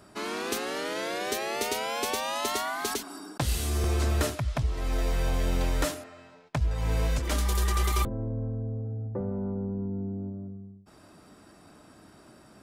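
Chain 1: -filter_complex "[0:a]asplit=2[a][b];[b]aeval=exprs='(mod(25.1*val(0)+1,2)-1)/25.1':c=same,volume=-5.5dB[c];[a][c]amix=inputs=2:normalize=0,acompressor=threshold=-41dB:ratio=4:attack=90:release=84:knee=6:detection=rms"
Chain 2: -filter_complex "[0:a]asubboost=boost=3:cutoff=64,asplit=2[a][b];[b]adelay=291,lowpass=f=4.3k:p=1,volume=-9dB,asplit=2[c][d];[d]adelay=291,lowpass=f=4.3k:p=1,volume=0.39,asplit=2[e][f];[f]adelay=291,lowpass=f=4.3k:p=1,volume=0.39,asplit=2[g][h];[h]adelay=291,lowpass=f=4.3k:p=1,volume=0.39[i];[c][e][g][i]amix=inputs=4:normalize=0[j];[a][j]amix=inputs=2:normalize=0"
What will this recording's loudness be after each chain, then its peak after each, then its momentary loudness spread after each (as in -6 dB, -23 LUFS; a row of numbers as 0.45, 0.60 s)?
-39.0, -27.0 LUFS; -19.5, -11.5 dBFS; 13, 12 LU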